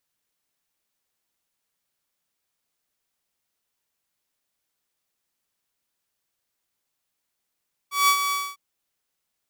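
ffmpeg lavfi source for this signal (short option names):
-f lavfi -i "aevalsrc='0.251*(2*mod(1140*t,1)-1)':d=0.652:s=44100,afade=t=in:d=0.172,afade=t=out:st=0.172:d=0.079:silence=0.398,afade=t=out:st=0.41:d=0.242"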